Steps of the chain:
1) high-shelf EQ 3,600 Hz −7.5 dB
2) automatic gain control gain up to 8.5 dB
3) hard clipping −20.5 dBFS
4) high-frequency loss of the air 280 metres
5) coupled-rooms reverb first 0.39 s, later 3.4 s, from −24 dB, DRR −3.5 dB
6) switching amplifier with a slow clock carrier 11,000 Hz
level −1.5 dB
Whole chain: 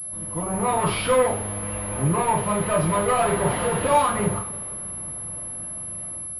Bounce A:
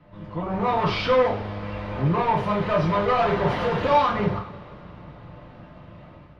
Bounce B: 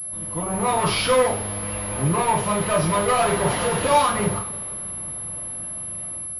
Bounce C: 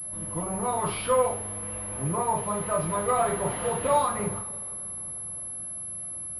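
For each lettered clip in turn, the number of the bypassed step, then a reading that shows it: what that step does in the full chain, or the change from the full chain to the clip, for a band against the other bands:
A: 6, change in momentary loudness spread +9 LU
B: 4, 4 kHz band +5.5 dB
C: 2, change in crest factor +2.0 dB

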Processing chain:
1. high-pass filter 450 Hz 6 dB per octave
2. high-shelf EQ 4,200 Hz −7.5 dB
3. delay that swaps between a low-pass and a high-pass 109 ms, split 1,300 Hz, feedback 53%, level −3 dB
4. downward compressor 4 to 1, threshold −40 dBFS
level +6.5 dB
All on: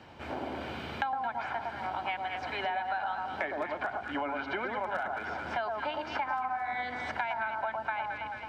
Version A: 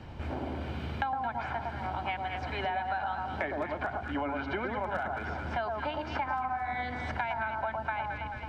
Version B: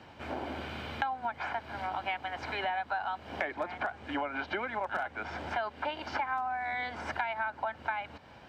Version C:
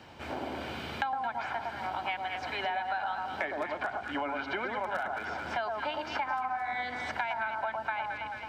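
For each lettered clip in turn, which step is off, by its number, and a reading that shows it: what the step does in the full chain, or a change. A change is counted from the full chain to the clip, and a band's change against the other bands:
1, 125 Hz band +11.0 dB
3, change in momentary loudness spread +1 LU
2, 4 kHz band +2.5 dB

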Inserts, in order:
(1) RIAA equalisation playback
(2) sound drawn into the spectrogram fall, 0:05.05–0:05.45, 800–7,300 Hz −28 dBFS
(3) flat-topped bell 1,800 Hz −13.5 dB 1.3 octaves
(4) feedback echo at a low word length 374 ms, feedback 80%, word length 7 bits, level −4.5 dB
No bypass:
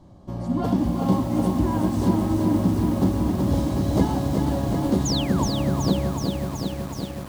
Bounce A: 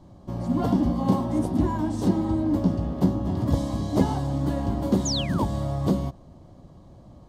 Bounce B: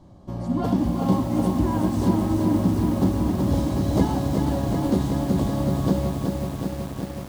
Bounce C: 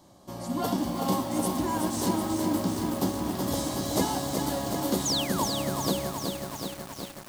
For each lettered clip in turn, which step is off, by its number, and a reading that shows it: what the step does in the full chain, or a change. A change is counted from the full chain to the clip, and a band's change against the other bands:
4, change in crest factor +3.0 dB
2, 4 kHz band −6.5 dB
1, 125 Hz band −11.5 dB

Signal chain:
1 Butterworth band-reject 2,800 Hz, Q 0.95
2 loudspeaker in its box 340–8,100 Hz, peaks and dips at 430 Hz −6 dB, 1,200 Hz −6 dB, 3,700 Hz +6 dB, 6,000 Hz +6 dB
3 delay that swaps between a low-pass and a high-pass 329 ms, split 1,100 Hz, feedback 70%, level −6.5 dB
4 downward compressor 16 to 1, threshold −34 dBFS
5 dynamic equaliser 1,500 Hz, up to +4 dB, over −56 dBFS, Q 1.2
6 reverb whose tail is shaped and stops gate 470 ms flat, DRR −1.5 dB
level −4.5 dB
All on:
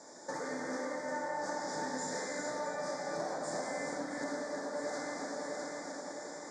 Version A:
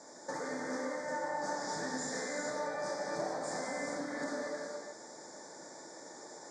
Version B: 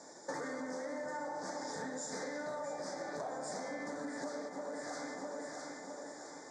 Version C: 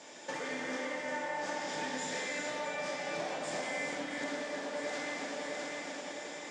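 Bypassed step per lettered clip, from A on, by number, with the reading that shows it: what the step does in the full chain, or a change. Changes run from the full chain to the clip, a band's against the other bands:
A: 3, change in momentary loudness spread +8 LU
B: 6, change in integrated loudness −3.5 LU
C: 1, 4 kHz band +6.0 dB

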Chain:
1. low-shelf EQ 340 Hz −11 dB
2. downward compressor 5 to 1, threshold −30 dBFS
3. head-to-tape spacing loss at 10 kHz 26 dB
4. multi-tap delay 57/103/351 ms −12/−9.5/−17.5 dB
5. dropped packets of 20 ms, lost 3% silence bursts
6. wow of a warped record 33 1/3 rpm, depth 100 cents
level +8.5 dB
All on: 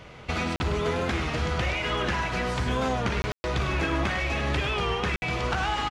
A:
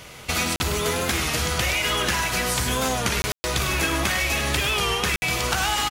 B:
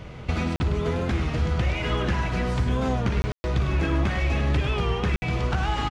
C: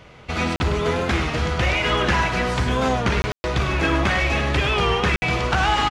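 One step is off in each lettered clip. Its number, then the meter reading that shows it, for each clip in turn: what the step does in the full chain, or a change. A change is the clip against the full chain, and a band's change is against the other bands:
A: 3, 8 kHz band +16.0 dB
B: 1, 125 Hz band +8.5 dB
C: 2, average gain reduction 6.0 dB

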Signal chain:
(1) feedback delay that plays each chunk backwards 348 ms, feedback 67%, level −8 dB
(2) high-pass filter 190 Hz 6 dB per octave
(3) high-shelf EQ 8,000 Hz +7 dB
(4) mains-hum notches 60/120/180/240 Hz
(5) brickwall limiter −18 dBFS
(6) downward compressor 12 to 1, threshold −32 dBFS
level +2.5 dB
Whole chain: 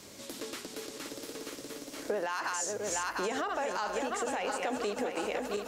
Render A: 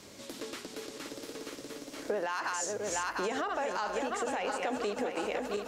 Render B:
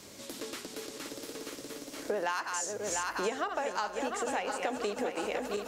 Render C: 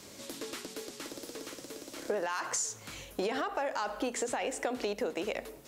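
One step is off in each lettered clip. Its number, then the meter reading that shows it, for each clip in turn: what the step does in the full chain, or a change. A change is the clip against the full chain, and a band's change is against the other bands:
3, 8 kHz band −2.0 dB
5, change in crest factor +2.0 dB
1, 1 kHz band −2.0 dB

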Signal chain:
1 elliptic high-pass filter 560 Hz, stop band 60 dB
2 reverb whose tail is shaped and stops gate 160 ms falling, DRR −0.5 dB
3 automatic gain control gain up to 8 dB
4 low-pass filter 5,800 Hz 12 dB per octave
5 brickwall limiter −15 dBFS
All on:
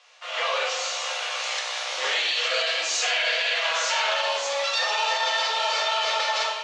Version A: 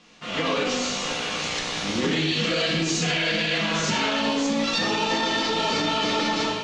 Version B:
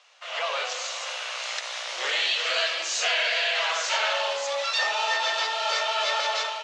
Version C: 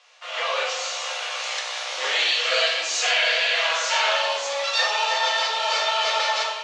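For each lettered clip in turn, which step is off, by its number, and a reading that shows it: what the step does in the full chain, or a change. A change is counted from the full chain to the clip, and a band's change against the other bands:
1, change in momentary loudness spread −1 LU
2, change in momentary loudness spread +3 LU
5, change in crest factor +5.5 dB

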